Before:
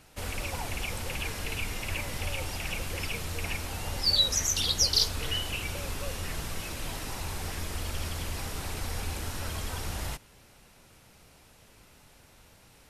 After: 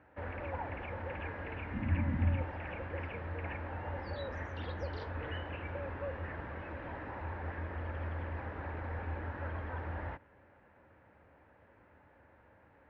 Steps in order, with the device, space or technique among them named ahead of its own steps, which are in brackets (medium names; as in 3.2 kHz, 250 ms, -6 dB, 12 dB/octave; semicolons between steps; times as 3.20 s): 1.73–2.41 s: resonant low shelf 320 Hz +10 dB, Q 3; bass cabinet (cabinet simulation 73–2000 Hz, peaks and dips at 80 Hz +8 dB, 150 Hz -4 dB, 300 Hz +6 dB, 550 Hz +8 dB, 900 Hz +6 dB, 1.7 kHz +8 dB); trim -6.5 dB